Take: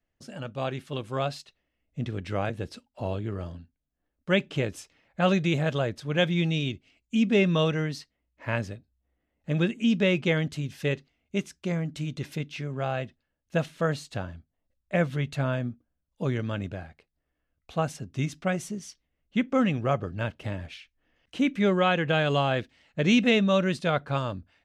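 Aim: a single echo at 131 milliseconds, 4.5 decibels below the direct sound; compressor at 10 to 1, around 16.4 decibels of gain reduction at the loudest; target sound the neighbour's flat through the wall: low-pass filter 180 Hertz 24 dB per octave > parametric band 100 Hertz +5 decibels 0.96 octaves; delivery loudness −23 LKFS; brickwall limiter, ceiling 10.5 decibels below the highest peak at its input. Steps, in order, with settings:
downward compressor 10 to 1, threshold −35 dBFS
brickwall limiter −32 dBFS
low-pass filter 180 Hz 24 dB per octave
parametric band 100 Hz +5 dB 0.96 octaves
single-tap delay 131 ms −4.5 dB
level +20.5 dB

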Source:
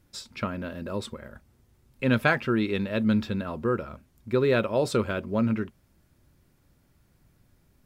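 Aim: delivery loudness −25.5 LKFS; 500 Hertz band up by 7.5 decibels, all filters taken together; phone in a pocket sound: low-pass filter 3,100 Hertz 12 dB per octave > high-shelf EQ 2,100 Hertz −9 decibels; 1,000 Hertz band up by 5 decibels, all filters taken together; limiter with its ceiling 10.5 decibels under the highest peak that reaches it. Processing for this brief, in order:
parametric band 500 Hz +8 dB
parametric band 1,000 Hz +7 dB
brickwall limiter −12.5 dBFS
low-pass filter 3,100 Hz 12 dB per octave
high-shelf EQ 2,100 Hz −9 dB

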